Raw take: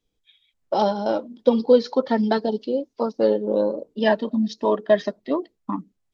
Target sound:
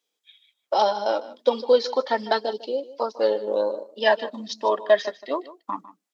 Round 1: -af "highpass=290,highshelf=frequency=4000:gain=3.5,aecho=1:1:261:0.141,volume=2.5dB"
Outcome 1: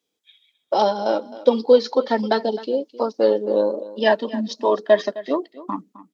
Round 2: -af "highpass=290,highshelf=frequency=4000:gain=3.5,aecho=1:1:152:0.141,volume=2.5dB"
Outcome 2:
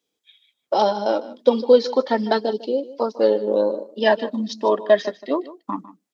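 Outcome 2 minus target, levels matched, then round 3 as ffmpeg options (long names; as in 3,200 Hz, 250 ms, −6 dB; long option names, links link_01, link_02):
250 Hz band +6.5 dB
-af "highpass=590,highshelf=frequency=4000:gain=3.5,aecho=1:1:152:0.141,volume=2.5dB"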